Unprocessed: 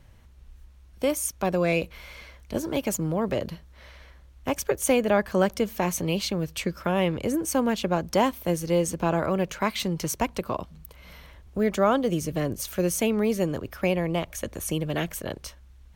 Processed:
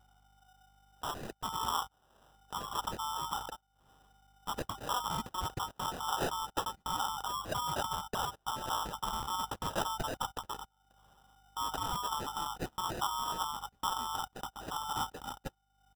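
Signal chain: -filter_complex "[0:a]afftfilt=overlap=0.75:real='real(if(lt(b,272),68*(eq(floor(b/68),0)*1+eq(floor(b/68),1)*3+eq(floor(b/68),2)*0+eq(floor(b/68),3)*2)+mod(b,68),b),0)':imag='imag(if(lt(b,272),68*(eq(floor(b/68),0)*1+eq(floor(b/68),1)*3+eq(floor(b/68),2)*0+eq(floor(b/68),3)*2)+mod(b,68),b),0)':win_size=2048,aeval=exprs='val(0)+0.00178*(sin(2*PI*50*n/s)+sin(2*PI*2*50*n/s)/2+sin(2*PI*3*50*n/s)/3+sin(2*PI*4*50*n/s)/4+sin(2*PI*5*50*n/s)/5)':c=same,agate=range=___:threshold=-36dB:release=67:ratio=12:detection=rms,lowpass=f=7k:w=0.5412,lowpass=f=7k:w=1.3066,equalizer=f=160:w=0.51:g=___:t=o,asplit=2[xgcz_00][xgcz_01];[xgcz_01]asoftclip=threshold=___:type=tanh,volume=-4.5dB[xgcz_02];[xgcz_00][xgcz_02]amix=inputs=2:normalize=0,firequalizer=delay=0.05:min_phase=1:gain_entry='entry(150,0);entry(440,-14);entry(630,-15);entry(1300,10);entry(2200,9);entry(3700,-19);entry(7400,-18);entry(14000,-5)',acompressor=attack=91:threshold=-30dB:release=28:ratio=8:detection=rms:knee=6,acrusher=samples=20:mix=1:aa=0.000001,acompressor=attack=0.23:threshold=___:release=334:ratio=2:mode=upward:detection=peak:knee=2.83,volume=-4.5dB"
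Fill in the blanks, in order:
-24dB, -2.5, -20.5dB, -41dB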